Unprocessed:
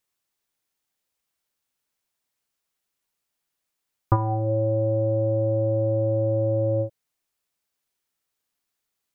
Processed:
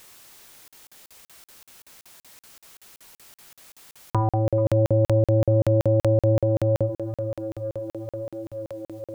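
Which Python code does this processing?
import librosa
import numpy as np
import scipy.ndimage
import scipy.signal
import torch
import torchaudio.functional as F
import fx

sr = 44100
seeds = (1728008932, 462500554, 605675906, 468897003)

y = fx.low_shelf(x, sr, hz=490.0, db=5.5, at=(4.65, 6.4))
y = fx.hum_notches(y, sr, base_hz=50, count=6)
y = fx.echo_tape(y, sr, ms=463, feedback_pct=82, wet_db=-17.0, lp_hz=1100.0, drive_db=9.0, wow_cents=30)
y = fx.buffer_crackle(y, sr, first_s=0.68, period_s=0.19, block=2048, kind='zero')
y = fx.env_flatten(y, sr, amount_pct=50)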